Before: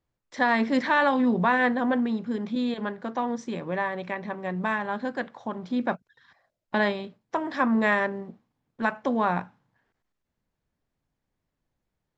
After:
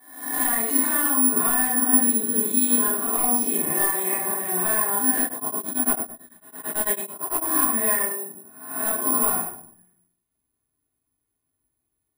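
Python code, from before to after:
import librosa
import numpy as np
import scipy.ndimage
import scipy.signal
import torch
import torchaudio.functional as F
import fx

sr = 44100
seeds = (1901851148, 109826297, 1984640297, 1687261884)

y = fx.spec_swells(x, sr, rise_s=0.72)
y = scipy.signal.sosfilt(scipy.signal.butter(2, 72.0, 'highpass', fs=sr, output='sos'), y)
y = fx.notch(y, sr, hz=5500.0, q=13.0)
y = y + 0.69 * np.pad(y, (int(2.8 * sr / 1000.0), 0))[:len(y)]
y = fx.rider(y, sr, range_db=4, speed_s=0.5)
y = np.clip(y, -10.0 ** (-16.5 / 20.0), 10.0 ** (-16.5 / 20.0))
y = fx.room_shoebox(y, sr, seeds[0], volume_m3=890.0, walls='furnished', distance_m=9.6)
y = (np.kron(y[::4], np.eye(4)[0]) * 4)[:len(y)]
y = fx.tremolo_abs(y, sr, hz=9.0, at=(5.24, 7.46))
y = F.gain(torch.from_numpy(y), -16.0).numpy()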